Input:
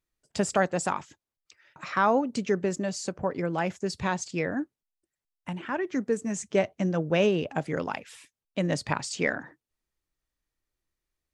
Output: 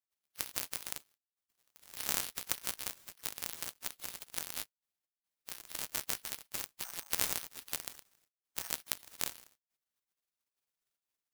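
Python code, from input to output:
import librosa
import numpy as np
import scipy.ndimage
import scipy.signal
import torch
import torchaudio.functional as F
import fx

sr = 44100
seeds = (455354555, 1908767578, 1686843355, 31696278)

y = fx.cycle_switch(x, sr, every=3, mode='inverted')
y = fx.spec_gate(y, sr, threshold_db=-30, keep='weak')
y = (np.kron(y[::6], np.eye(6)[0]) * 6)[:len(y)]
y = F.gain(torch.from_numpy(y), -1.0).numpy()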